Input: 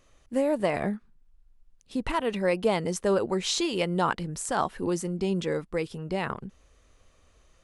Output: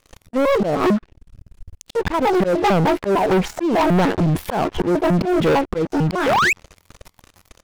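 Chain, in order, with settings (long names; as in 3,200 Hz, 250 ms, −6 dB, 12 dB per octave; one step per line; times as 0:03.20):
pitch shifter gated in a rhythm +10.5 semitones, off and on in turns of 150 ms
sound drawn into the spectrogram rise, 0:06.26–0:06.53, 450–2,700 Hz −32 dBFS
treble cut that deepens with the level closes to 640 Hz, closed at −23 dBFS
volume swells 239 ms
leveller curve on the samples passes 5
level +4.5 dB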